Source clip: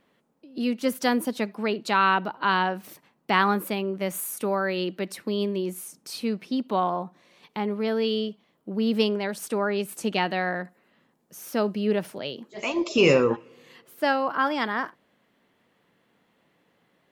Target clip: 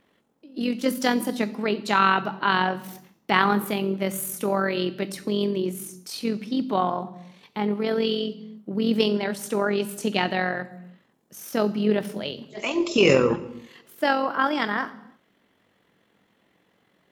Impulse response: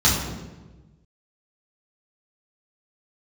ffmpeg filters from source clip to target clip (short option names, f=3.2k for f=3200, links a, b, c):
-filter_complex "[0:a]tremolo=f=44:d=0.519,asplit=2[a][b];[1:a]atrim=start_sample=2205,afade=t=out:st=0.39:d=0.01,atrim=end_sample=17640,highshelf=f=3.3k:g=11.5[c];[b][c]afir=irnorm=-1:irlink=0,volume=-33dB[d];[a][d]amix=inputs=2:normalize=0,volume=3.5dB"